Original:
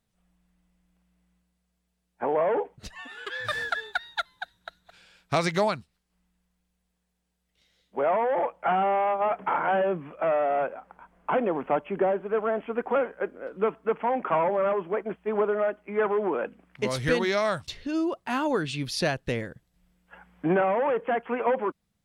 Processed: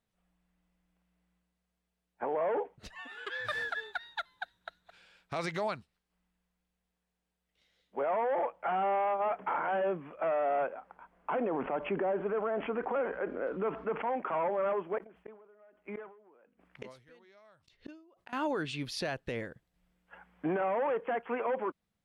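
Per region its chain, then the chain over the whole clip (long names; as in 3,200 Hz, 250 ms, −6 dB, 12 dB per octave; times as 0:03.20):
0:11.34–0:14.02: high-frequency loss of the air 200 metres + envelope flattener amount 50%
0:14.98–0:18.33: gate with flip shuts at −27 dBFS, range −31 dB + level that may fall only so fast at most 98 dB per second
whole clip: bass and treble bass −5 dB, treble −6 dB; brickwall limiter −21 dBFS; level −3.5 dB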